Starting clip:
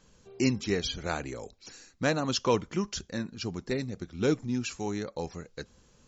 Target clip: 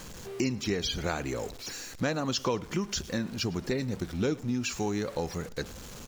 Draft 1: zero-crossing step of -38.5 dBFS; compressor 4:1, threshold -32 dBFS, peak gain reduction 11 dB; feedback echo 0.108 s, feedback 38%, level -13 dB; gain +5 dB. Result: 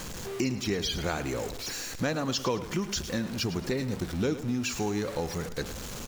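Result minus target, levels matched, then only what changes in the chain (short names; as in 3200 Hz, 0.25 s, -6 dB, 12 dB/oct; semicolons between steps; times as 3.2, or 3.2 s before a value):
echo-to-direct +9 dB; zero-crossing step: distortion +6 dB
change: zero-crossing step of -45 dBFS; change: feedback echo 0.108 s, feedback 38%, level -22 dB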